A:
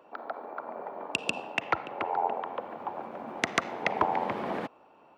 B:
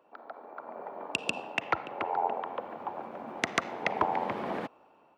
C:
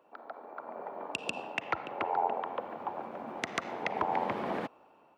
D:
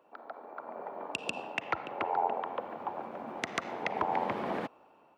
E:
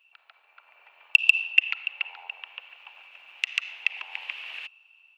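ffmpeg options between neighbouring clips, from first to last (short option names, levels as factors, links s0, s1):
-af "dynaudnorm=f=270:g=5:m=2.37,volume=0.398"
-af "alimiter=limit=0.133:level=0:latency=1:release=117"
-af anull
-af "highpass=f=2700:t=q:w=12"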